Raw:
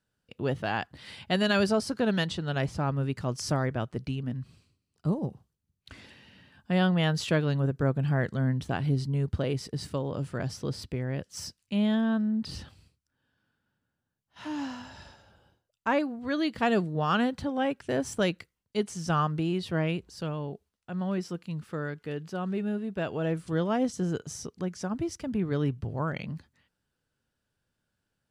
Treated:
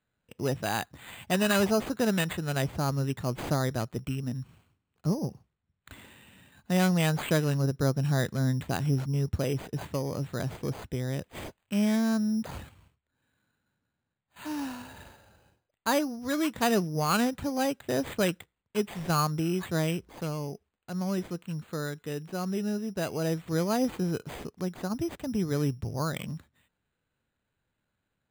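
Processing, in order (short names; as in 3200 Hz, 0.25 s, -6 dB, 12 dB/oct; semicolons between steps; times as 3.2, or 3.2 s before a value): careless resampling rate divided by 8×, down none, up hold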